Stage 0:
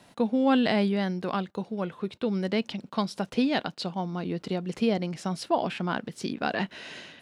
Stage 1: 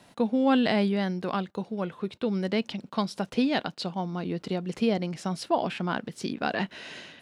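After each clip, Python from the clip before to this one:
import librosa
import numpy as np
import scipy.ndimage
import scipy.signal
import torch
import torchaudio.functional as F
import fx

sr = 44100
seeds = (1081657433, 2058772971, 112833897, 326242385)

y = x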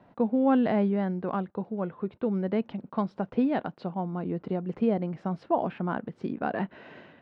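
y = scipy.signal.sosfilt(scipy.signal.butter(2, 1300.0, 'lowpass', fs=sr, output='sos'), x)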